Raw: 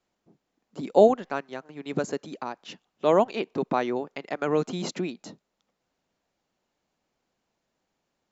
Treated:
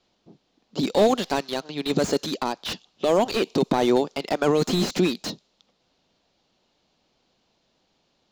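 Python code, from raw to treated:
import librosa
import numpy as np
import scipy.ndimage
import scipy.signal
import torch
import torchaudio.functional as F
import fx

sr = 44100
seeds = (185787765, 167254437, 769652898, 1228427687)

p1 = fx.high_shelf_res(x, sr, hz=2800.0, db=13.5, q=1.5)
p2 = fx.env_lowpass(p1, sr, base_hz=2500.0, full_db=-22.5)
p3 = fx.peak_eq(p2, sr, hz=4100.0, db=5.5, octaves=1.1, at=(0.93, 1.91))
p4 = fx.over_compress(p3, sr, threshold_db=-27.0, ratio=-0.5)
p5 = p3 + (p4 * 10.0 ** (2.5 / 20.0))
y = fx.slew_limit(p5, sr, full_power_hz=140.0)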